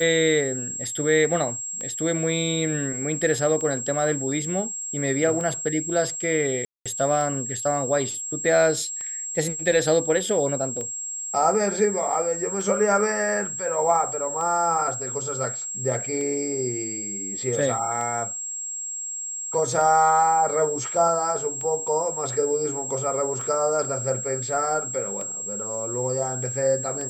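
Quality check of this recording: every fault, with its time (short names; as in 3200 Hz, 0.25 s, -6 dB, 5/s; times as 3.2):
tick 33 1/3 rpm -20 dBFS
tone 7600 Hz -29 dBFS
6.65–6.86 gap 0.206 s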